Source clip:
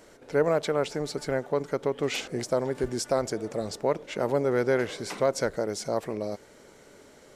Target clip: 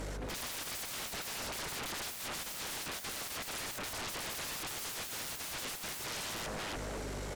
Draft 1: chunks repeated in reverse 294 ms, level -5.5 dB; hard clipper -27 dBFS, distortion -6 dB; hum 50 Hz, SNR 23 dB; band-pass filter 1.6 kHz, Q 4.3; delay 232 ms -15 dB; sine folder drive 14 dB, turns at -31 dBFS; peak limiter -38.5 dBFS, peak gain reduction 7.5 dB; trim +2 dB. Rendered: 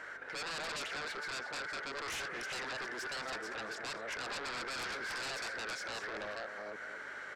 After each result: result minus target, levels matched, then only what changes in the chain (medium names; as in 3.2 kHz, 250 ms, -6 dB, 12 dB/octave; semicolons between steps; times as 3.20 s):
hard clipper: distortion +16 dB; 2 kHz band +6.0 dB
change: hard clipper -16 dBFS, distortion -23 dB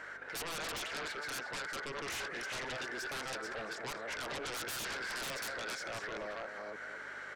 2 kHz band +5.5 dB
remove: band-pass filter 1.6 kHz, Q 4.3